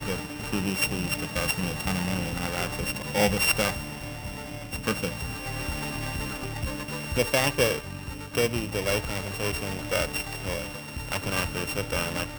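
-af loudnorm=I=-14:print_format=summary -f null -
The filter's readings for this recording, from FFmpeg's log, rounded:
Input Integrated:    -28.5 LUFS
Input True Peak:      -7.8 dBTP
Input LRA:             2.8 LU
Input Threshold:     -38.5 LUFS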